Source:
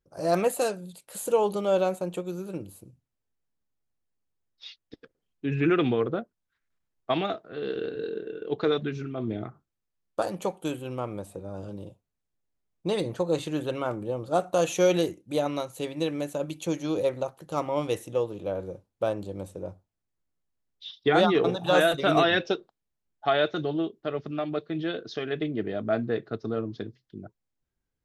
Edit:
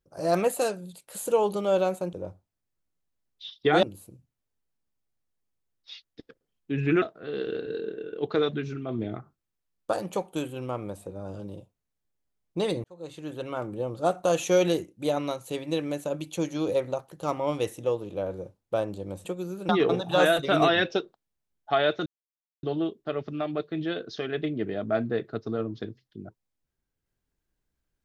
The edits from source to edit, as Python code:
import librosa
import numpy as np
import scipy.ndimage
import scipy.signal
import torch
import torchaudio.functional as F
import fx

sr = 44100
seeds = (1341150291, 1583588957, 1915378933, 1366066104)

y = fx.edit(x, sr, fx.swap(start_s=2.13, length_s=0.44, other_s=19.54, other_length_s=1.7),
    fx.cut(start_s=5.76, length_s=1.55),
    fx.fade_in_span(start_s=13.13, length_s=1.0),
    fx.insert_silence(at_s=23.61, length_s=0.57), tone=tone)